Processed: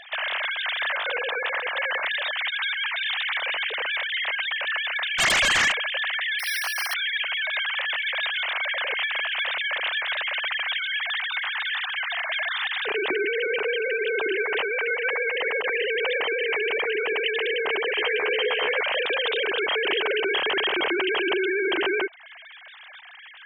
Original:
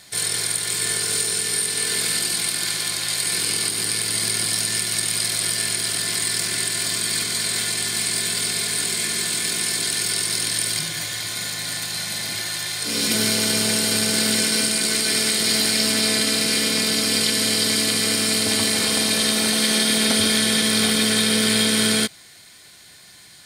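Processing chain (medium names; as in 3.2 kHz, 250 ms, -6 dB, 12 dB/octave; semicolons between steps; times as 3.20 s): formants replaced by sine waves; compression 3:1, threshold -26 dBFS, peak gain reduction 10 dB; 5.18–5.71 s: sine folder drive 10 dB -> 6 dB, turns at -18.5 dBFS; 6.39–6.94 s: careless resampling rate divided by 6×, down filtered, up hold; 17.97–18.81 s: doubling 14 ms -4.5 dB; trim +1.5 dB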